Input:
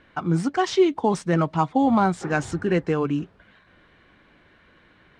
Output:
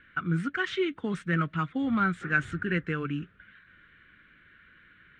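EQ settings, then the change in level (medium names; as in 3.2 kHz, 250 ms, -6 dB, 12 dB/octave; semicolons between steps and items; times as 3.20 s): FFT filter 180 Hz 0 dB, 490 Hz -8 dB, 880 Hz -19 dB, 1.4 kHz +9 dB, 3.5 kHz +1 dB, 5 kHz -14 dB, 9.8 kHz -8 dB; -5.0 dB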